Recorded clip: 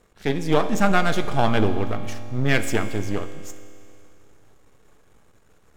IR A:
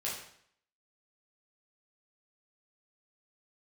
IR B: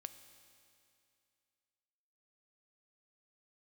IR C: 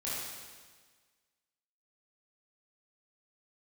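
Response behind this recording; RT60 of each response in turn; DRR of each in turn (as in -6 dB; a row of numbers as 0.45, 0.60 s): B; 0.65, 2.5, 1.5 s; -6.5, 10.0, -9.5 dB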